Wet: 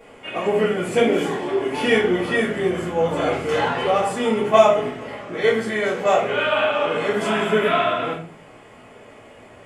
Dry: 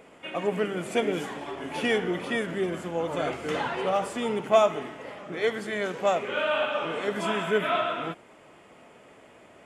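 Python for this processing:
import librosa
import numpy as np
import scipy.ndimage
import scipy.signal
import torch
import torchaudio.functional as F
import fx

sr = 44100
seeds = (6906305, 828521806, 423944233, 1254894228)

y = fx.peak_eq(x, sr, hz=370.0, db=11.0, octaves=0.45, at=(1.2, 1.66))
y = fx.room_shoebox(y, sr, seeds[0], volume_m3=31.0, walls='mixed', distance_m=1.5)
y = F.gain(torch.from_numpy(y), -2.0).numpy()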